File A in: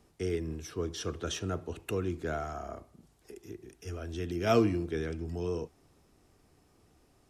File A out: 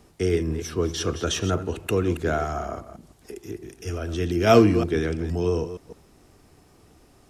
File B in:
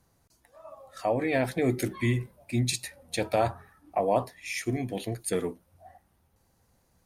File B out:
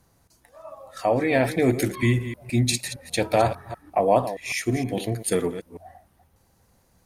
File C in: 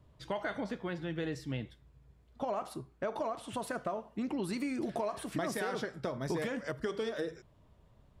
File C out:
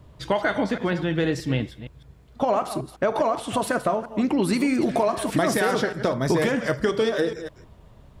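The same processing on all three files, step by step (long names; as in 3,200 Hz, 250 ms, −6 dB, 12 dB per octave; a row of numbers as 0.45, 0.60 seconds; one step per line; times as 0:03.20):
delay that plays each chunk backwards 156 ms, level −11.5 dB
loudness normalisation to −24 LKFS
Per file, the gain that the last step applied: +9.5, +5.5, +13.0 decibels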